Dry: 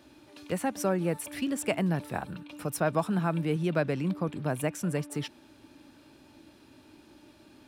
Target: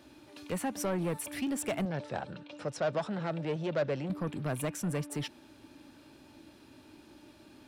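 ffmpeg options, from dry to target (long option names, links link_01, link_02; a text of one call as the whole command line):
ffmpeg -i in.wav -filter_complex "[0:a]asoftclip=type=tanh:threshold=-26.5dB,asettb=1/sr,asplit=3[link_01][link_02][link_03];[link_01]atrim=end=1.854[link_04];[link_02]atrim=start=1.85:end=4.1,asetpts=PTS-STARTPTS,afade=type=in:duration=0.004:curve=qsin,afade=type=out:start_time=2.246:duration=0.004:curve=qsin,highpass=110,equalizer=frequency=180:width_type=q:width=4:gain=-6,equalizer=frequency=280:width_type=q:width=4:gain=-5,equalizer=frequency=550:width_type=q:width=4:gain=7,equalizer=frequency=1100:width_type=q:width=4:gain=-4,equalizer=frequency=2400:width_type=q:width=4:gain=-3,lowpass=frequency=6600:width=0.5412,lowpass=frequency=6600:width=1.3066[link_05];[link_03]atrim=start=4.096[link_06];[link_04][link_05]acrossfade=duration=0.004:curve1=hsin:curve2=qsin[link_07];[link_07][link_06]acrossfade=duration=0.004:curve1=qsin:curve2=hsin" out.wav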